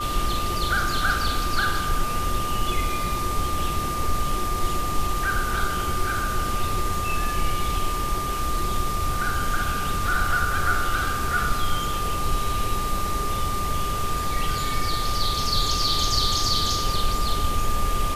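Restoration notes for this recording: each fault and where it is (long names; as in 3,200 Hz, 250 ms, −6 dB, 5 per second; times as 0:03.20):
whistle 1,200 Hz −27 dBFS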